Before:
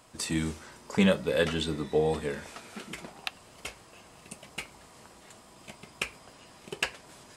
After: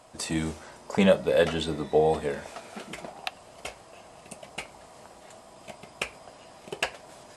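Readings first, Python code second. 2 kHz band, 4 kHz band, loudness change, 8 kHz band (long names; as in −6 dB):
+0.5 dB, 0.0 dB, +3.5 dB, 0.0 dB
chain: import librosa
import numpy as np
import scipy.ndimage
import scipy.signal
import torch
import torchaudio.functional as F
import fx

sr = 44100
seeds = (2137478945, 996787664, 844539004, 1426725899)

y = fx.brickwall_lowpass(x, sr, high_hz=12000.0)
y = fx.peak_eq(y, sr, hz=670.0, db=9.5, octaves=0.84)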